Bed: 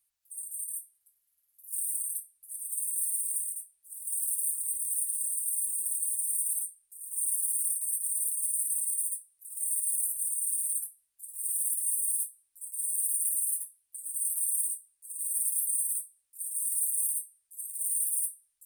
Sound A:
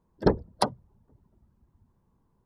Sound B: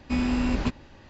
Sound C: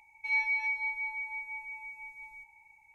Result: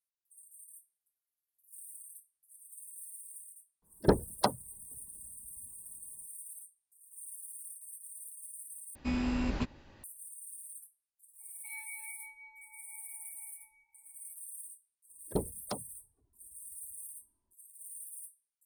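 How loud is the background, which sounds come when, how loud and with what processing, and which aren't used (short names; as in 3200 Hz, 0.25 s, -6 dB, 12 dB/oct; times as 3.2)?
bed -17 dB
3.82 add A -3 dB
8.95 replace with B -7 dB
11.4 add C -17.5 dB
15.09 add A -10 dB + envelope flanger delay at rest 3.2 ms, full sweep at -22 dBFS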